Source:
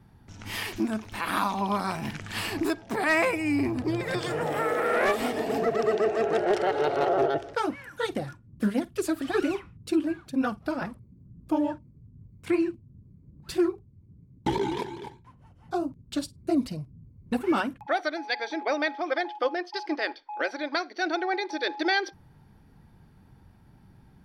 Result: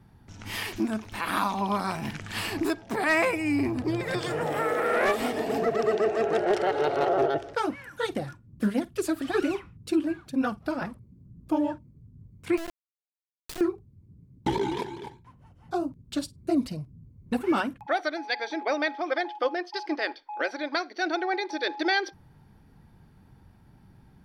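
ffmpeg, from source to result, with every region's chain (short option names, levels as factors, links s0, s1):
-filter_complex "[0:a]asettb=1/sr,asplit=3[s0][s1][s2];[s0]atrim=end=12.574[s3];[s1]atrim=start=12.57:end=13.61,asetpts=PTS-STARTPTS,afade=t=in:d=0.004:c=qsin,afade=t=out:st=1.036:d=0.004:c=qsin,acompressor=threshold=0.0251:ratio=10:attack=3.2:release=140:knee=1:detection=peak,acrusher=bits=3:dc=4:mix=0:aa=0.000001[s4];[s2]atrim=start=13.606[s5];[s3][s4]acrossfade=d=0.004:c1=hsin:c2=qsin[s6];[s6][s5]acrossfade=d=0.004:c1=qsin:c2=hsin"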